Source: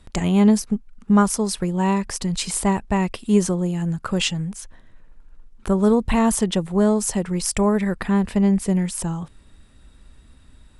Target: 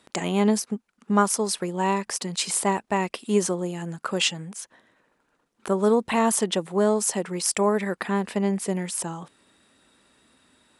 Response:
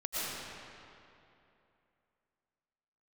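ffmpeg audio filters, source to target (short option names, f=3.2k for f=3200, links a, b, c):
-af "highpass=300"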